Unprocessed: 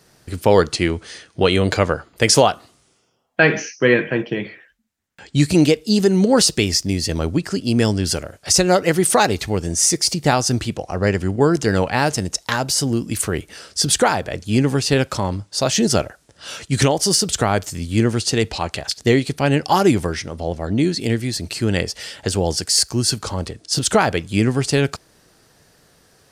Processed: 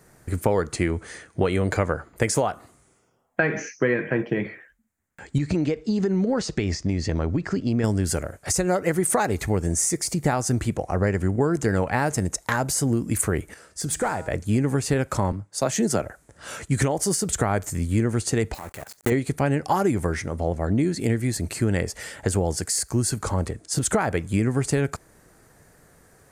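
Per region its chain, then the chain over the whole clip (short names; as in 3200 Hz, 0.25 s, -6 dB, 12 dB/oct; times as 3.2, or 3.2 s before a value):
5.38–7.84 LPF 5600 Hz 24 dB/oct + compressor 4:1, threshold -18 dBFS
13.54–14.28 resonator 160 Hz, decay 1.5 s + hard clip -16.5 dBFS
15.32–16.02 HPF 130 Hz + three-band expander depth 40%
18.54–19.12 block floating point 3-bit + low shelf 70 Hz -8.5 dB + level quantiser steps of 18 dB
whole clip: low shelf 66 Hz +6.5 dB; compressor, threshold -18 dBFS; band shelf 3900 Hz -10.5 dB 1.3 oct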